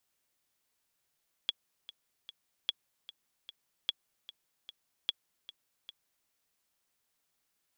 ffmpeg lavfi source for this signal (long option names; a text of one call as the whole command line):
ffmpeg -f lavfi -i "aevalsrc='pow(10,(-16.5-17*gte(mod(t,3*60/150),60/150))/20)*sin(2*PI*3360*mod(t,60/150))*exp(-6.91*mod(t,60/150)/0.03)':duration=4.8:sample_rate=44100" out.wav